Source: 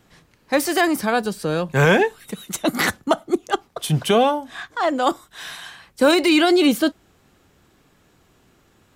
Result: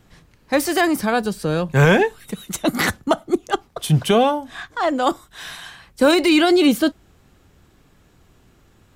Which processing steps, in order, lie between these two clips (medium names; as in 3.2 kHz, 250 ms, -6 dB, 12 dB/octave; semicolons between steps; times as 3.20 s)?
bass shelf 110 Hz +11 dB